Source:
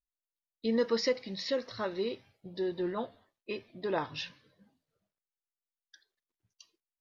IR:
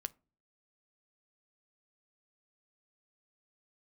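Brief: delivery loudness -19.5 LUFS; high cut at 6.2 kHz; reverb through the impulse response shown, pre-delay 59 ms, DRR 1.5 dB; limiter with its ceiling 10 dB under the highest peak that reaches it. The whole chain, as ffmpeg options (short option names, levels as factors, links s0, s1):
-filter_complex "[0:a]lowpass=6200,alimiter=level_in=1.41:limit=0.0631:level=0:latency=1,volume=0.708,asplit=2[s0][s1];[1:a]atrim=start_sample=2205,adelay=59[s2];[s1][s2]afir=irnorm=-1:irlink=0,volume=1.06[s3];[s0][s3]amix=inputs=2:normalize=0,volume=6.31"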